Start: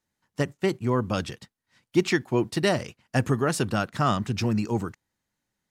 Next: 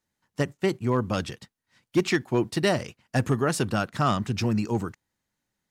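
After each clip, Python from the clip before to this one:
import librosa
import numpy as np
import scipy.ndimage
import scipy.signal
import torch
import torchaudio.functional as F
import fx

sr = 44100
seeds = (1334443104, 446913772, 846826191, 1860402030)

y = np.clip(x, -10.0 ** (-14.0 / 20.0), 10.0 ** (-14.0 / 20.0))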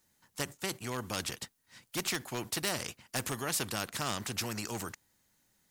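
y = fx.high_shelf(x, sr, hz=6000.0, db=10.5)
y = fx.spectral_comp(y, sr, ratio=2.0)
y = y * 10.0 ** (-4.0 / 20.0)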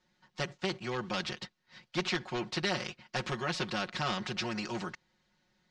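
y = scipy.signal.sosfilt(scipy.signal.butter(4, 4800.0, 'lowpass', fs=sr, output='sos'), x)
y = y + 0.88 * np.pad(y, (int(5.5 * sr / 1000.0), 0))[:len(y)]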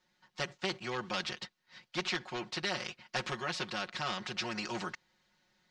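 y = fx.low_shelf(x, sr, hz=430.0, db=-6.5)
y = fx.rider(y, sr, range_db=10, speed_s=0.5)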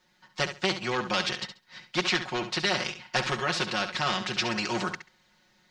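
y = fx.echo_feedback(x, sr, ms=68, feedback_pct=18, wet_db=-10.0)
y = y * 10.0 ** (8.0 / 20.0)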